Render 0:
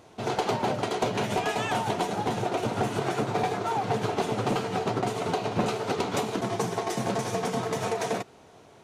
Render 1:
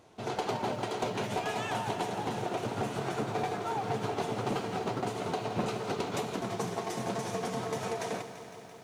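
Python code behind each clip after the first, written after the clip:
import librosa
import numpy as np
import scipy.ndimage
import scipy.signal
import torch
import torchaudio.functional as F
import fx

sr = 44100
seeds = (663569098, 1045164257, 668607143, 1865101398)

y = fx.echo_crushed(x, sr, ms=169, feedback_pct=80, bits=9, wet_db=-12.0)
y = F.gain(torch.from_numpy(y), -6.0).numpy()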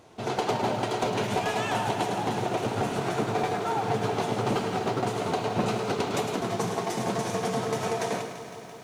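y = x + 10.0 ** (-8.5 / 20.0) * np.pad(x, (int(106 * sr / 1000.0), 0))[:len(x)]
y = F.gain(torch.from_numpy(y), 5.0).numpy()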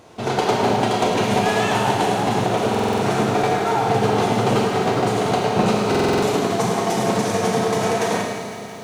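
y = fx.rev_schroeder(x, sr, rt60_s=1.2, comb_ms=30, drr_db=2.0)
y = fx.buffer_glitch(y, sr, at_s=(2.7, 5.9), block=2048, repeats=6)
y = F.gain(torch.from_numpy(y), 6.5).numpy()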